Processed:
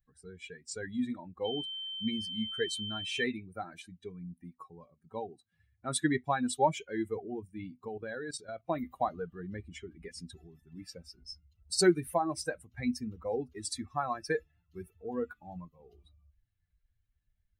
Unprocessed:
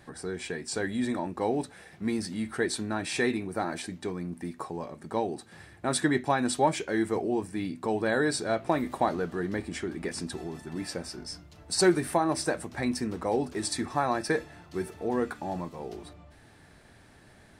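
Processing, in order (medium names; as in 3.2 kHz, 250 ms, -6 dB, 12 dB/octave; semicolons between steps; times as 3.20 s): expander on every frequency bin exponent 2; 1.44–3.22 s: whistle 3.1 kHz -37 dBFS; 7.88–8.68 s: level held to a coarse grid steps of 13 dB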